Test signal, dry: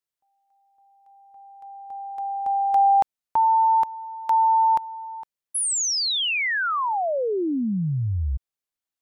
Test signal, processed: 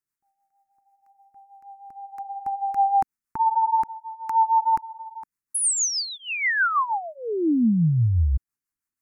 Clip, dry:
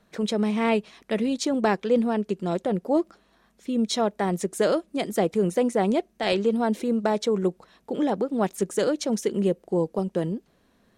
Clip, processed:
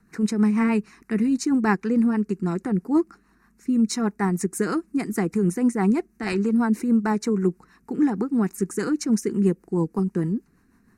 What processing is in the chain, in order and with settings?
peaking EQ 270 Hz +3 dB 1.1 oct; rotary cabinet horn 6.3 Hz; static phaser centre 1.4 kHz, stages 4; trim +6 dB

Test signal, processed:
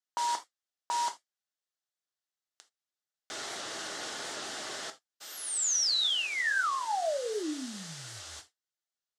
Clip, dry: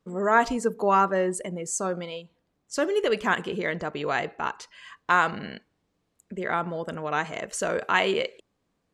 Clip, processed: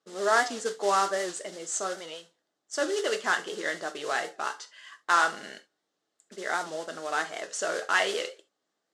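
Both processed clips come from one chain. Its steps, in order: modulation noise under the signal 12 dB; cabinet simulation 470–7800 Hz, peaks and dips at 490 Hz -4 dB, 970 Hz -8 dB, 2.4 kHz -9 dB; gated-style reverb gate 100 ms falling, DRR 6.5 dB; warped record 78 rpm, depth 100 cents

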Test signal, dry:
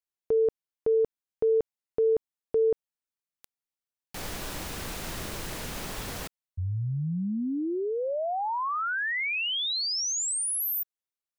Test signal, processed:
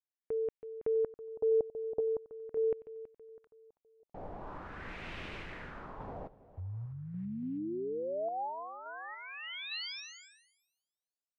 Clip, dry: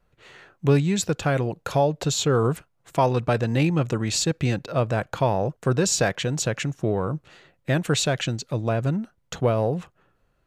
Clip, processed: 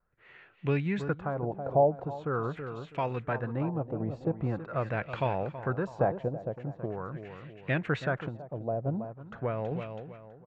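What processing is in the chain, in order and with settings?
feedback delay 326 ms, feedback 40%, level -11.5 dB; random-step tremolo; LFO low-pass sine 0.43 Hz 670–2600 Hz; trim -7 dB

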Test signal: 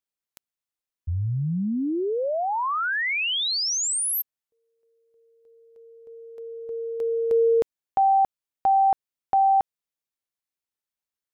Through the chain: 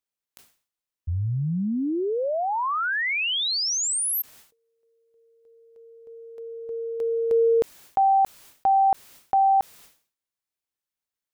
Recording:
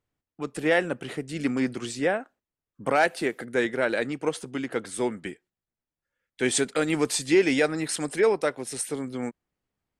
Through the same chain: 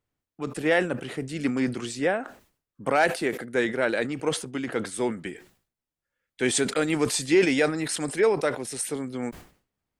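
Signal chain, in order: decay stretcher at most 130 dB/s

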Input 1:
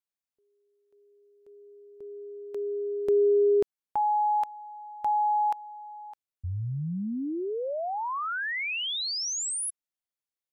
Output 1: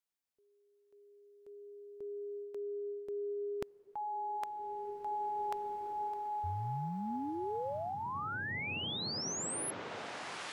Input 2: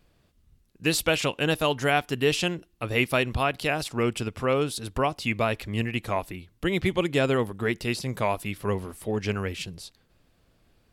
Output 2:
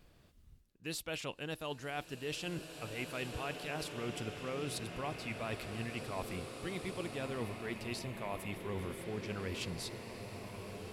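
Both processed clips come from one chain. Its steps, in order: reverse; compression 6:1, threshold -39 dBFS; reverse; swelling reverb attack 2270 ms, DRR 4 dB

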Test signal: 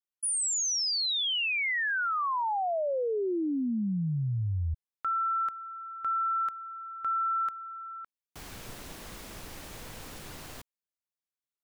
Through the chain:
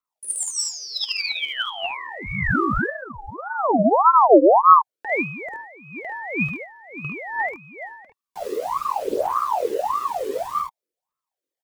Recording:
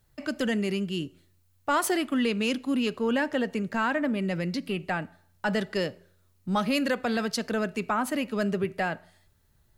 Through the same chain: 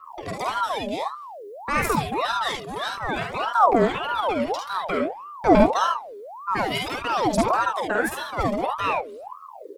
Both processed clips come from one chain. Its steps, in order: phaser 0.54 Hz, delay 1.6 ms, feedback 75%; resonant low shelf 200 Hz +12.5 dB, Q 1.5; on a send: multi-tap echo 48/50/73 ms -6.5/-6.5/-6 dB; on the sum: ring modulator with a swept carrier 800 Hz, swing 50%, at 1.7 Hz

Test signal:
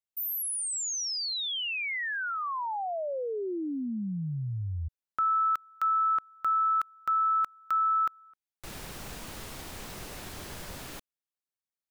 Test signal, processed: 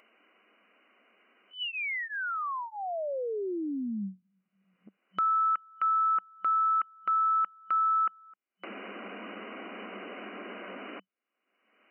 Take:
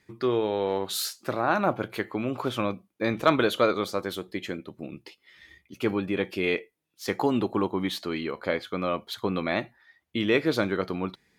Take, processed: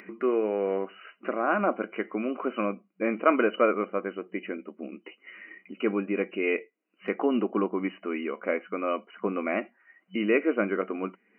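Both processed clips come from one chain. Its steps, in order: FFT band-pass 190–3000 Hz; upward compressor, threshold -34 dBFS; comb of notches 880 Hz

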